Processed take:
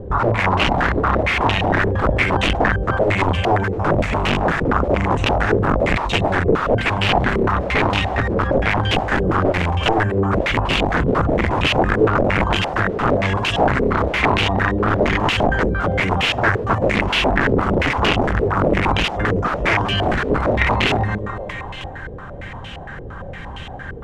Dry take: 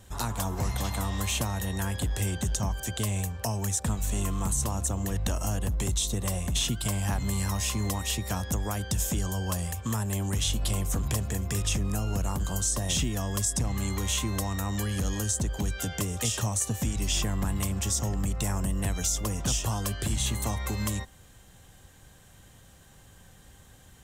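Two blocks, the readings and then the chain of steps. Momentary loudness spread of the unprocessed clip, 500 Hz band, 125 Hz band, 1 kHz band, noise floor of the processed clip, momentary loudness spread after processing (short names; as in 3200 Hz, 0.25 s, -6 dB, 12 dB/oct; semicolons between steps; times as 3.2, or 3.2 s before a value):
3 LU, +20.0 dB, +8.0 dB, +19.5 dB, -32 dBFS, 11 LU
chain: notches 50/100/150/200/250 Hz; dynamic EQ 120 Hz, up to +4 dB, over -42 dBFS, Q 2.3; on a send: split-band echo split 350 Hz, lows 0.104 s, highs 0.313 s, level -13.5 dB; on the sum: wrapped overs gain 24.5 dB; maximiser +32.5 dB; stepped low-pass 8.7 Hz 450–2800 Hz; gain -11.5 dB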